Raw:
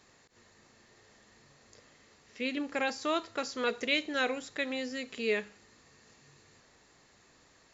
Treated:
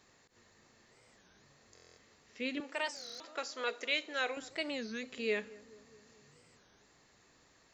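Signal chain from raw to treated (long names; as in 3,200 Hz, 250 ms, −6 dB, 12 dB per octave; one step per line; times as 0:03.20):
0:02.60–0:04.37: high-pass filter 470 Hz 12 dB per octave
feedback echo with a low-pass in the loop 216 ms, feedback 66%, low-pass 820 Hz, level −18.5 dB
buffer that repeats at 0:01.74/0:02.97, samples 1,024, times 9
wow of a warped record 33 1/3 rpm, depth 250 cents
level −3.5 dB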